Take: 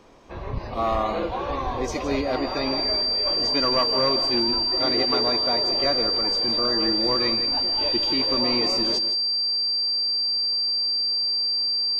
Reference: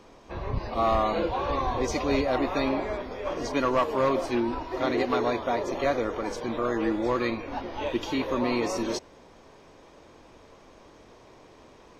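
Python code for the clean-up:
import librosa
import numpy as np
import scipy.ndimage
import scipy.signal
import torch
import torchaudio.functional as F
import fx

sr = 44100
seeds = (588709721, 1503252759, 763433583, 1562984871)

y = fx.notch(x, sr, hz=4700.0, q=30.0)
y = fx.fix_echo_inverse(y, sr, delay_ms=162, level_db=-11.0)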